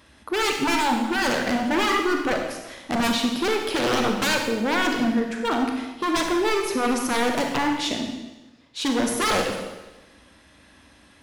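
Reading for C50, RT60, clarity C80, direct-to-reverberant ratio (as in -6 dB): 4.0 dB, 1.1 s, 6.5 dB, 2.5 dB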